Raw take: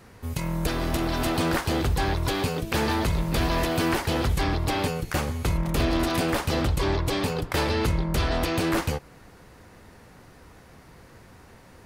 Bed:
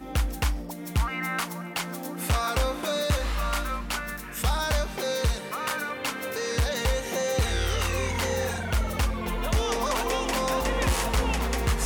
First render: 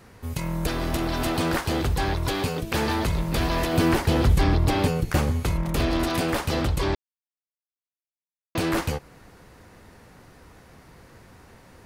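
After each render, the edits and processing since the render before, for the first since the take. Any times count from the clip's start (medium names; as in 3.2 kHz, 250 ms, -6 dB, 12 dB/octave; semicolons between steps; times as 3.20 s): 3.73–5.40 s: bass shelf 440 Hz +6.5 dB; 6.95–8.55 s: mute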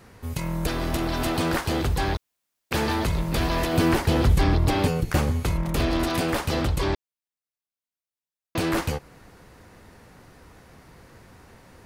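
2.17–2.71 s: room tone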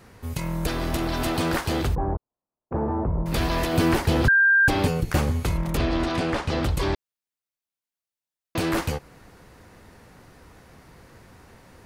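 1.95–3.26 s: low-pass 1 kHz 24 dB/octave; 4.28–4.68 s: bleep 1.59 kHz -14 dBFS; 5.77–6.63 s: distance through air 83 m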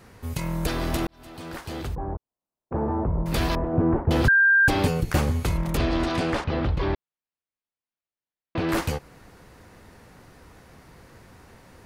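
1.07–2.88 s: fade in; 3.55–4.11 s: Bessel low-pass 780 Hz, order 4; 6.44–8.69 s: distance through air 260 m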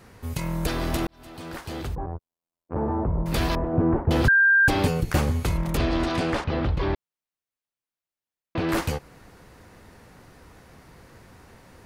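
2.06–2.76 s: robot voice 84.7 Hz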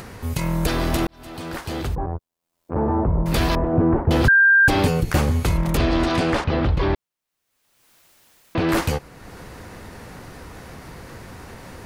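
in parallel at -1 dB: peak limiter -18.5 dBFS, peak gain reduction 8 dB; on the sum: upward compressor, threshold -31 dBFS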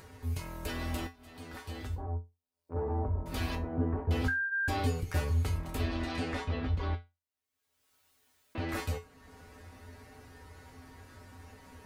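feedback comb 86 Hz, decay 0.23 s, harmonics odd, mix 90%; flange 0.38 Hz, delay 2 ms, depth 2.5 ms, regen -65%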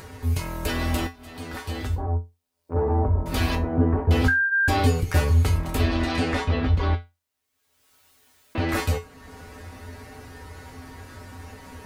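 trim +10.5 dB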